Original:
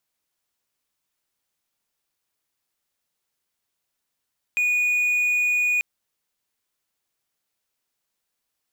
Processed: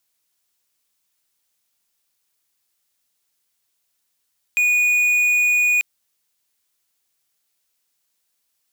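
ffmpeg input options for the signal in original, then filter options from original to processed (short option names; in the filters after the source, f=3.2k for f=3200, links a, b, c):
-f lavfi -i "aevalsrc='0.15*(1-4*abs(mod(2460*t+0.25,1)-0.5))':d=1.24:s=44100"
-af "highshelf=f=2.6k:g=9"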